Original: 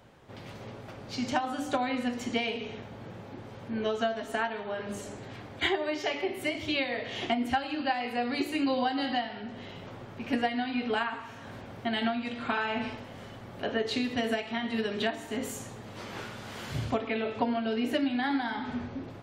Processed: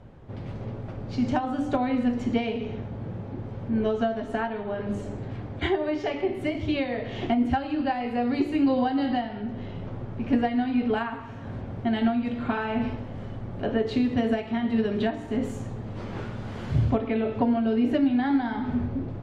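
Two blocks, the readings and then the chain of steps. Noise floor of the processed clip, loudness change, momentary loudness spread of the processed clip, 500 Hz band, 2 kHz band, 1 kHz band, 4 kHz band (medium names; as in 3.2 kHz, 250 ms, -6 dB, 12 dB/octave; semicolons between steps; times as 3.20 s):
-38 dBFS, +4.0 dB, 12 LU, +4.0 dB, -2.5 dB, +1.5 dB, -5.0 dB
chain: low-pass 11 kHz; tilt EQ -3.5 dB/octave; in parallel at -9.5 dB: saturation -19 dBFS, distortion -16 dB; on the sum: trim -1.5 dB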